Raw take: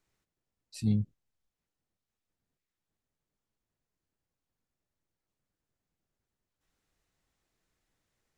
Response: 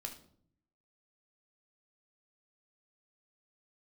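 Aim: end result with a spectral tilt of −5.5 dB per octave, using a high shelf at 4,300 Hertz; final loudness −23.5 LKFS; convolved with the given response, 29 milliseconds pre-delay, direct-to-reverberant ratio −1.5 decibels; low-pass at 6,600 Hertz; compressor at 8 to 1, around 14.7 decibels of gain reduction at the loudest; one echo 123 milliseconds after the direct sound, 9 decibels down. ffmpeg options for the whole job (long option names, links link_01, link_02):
-filter_complex "[0:a]lowpass=6600,highshelf=frequency=4300:gain=5,acompressor=threshold=-38dB:ratio=8,aecho=1:1:123:0.355,asplit=2[link_01][link_02];[1:a]atrim=start_sample=2205,adelay=29[link_03];[link_02][link_03]afir=irnorm=-1:irlink=0,volume=4dB[link_04];[link_01][link_04]amix=inputs=2:normalize=0,volume=14.5dB"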